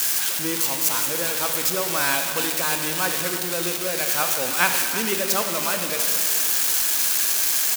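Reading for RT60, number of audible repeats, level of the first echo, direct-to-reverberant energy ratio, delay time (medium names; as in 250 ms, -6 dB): 2.4 s, 1, -13.5 dB, 4.5 dB, 331 ms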